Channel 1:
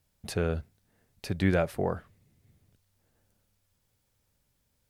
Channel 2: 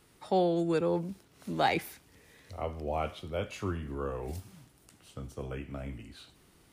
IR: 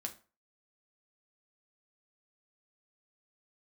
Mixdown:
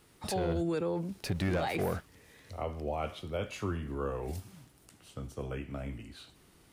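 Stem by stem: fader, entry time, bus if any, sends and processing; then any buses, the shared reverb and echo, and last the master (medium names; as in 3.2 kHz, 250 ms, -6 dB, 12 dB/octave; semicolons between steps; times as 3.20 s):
-4.5 dB, 0.00 s, no send, waveshaping leveller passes 2
+0.5 dB, 0.00 s, no send, none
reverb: none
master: peak limiter -24 dBFS, peak gain reduction 11.5 dB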